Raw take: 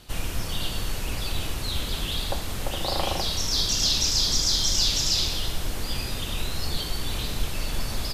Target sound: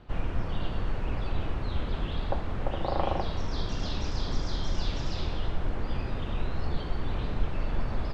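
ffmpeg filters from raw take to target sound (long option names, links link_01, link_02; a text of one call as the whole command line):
ffmpeg -i in.wav -af "lowpass=1500" out.wav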